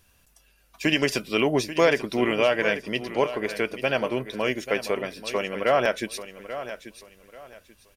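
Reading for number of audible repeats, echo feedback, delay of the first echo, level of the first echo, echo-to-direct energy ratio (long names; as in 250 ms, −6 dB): 2, 26%, 837 ms, −12.5 dB, −12.0 dB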